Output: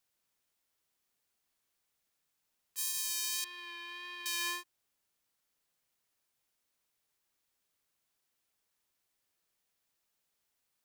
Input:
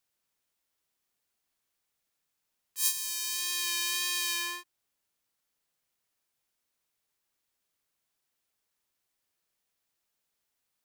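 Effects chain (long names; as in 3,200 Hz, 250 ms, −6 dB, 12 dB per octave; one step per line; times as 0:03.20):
brickwall limiter −20 dBFS, peak gain reduction 11.5 dB
0:03.44–0:04.26: high-frequency loss of the air 440 metres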